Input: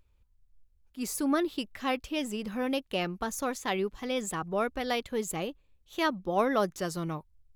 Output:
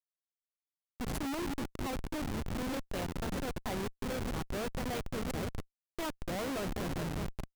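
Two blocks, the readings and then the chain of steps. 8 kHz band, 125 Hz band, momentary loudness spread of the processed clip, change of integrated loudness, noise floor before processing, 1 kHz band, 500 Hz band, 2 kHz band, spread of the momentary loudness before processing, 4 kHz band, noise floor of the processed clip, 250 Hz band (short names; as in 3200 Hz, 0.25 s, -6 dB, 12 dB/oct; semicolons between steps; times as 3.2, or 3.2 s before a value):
-7.0 dB, +2.5 dB, 4 LU, -6.0 dB, -66 dBFS, -8.0 dB, -8.0 dB, -6.5 dB, 8 LU, -6.5 dB, under -85 dBFS, -5.5 dB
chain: repeats that get brighter 0.202 s, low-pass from 400 Hz, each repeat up 1 oct, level -6 dB; Schmitt trigger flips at -29 dBFS; gain -4 dB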